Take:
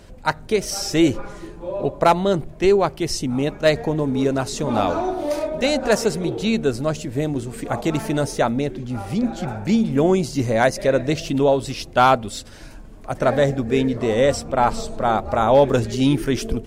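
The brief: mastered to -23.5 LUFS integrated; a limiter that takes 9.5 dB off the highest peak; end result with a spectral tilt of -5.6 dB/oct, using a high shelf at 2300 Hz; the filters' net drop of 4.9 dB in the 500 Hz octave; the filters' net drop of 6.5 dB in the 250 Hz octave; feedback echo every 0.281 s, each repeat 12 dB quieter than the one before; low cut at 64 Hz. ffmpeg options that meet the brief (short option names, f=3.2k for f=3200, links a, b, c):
-af "highpass=64,equalizer=f=250:t=o:g=-7,equalizer=f=500:t=o:g=-4,highshelf=f=2.3k:g=-6,alimiter=limit=-16.5dB:level=0:latency=1,aecho=1:1:281|562|843:0.251|0.0628|0.0157,volume=4dB"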